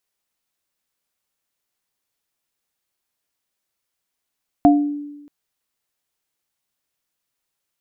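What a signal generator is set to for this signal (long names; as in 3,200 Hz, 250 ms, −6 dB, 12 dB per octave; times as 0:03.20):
inharmonic partials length 0.63 s, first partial 291 Hz, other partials 706 Hz, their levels −0.5 dB, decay 1.08 s, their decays 0.31 s, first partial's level −8 dB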